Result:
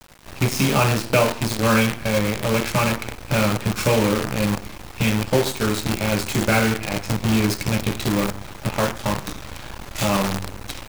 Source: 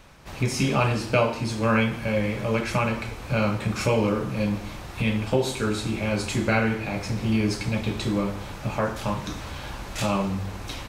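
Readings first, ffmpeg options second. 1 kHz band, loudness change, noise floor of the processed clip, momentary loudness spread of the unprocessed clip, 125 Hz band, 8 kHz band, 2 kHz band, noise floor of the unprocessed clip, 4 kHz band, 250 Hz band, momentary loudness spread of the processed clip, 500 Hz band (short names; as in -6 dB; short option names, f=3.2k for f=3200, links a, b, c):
+4.0 dB, +4.5 dB, -39 dBFS, 9 LU, +3.5 dB, +8.5 dB, +4.5 dB, -38 dBFS, +6.5 dB, +3.5 dB, 10 LU, +3.5 dB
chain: -af "acrusher=bits=5:dc=4:mix=0:aa=0.000001,volume=3.5dB"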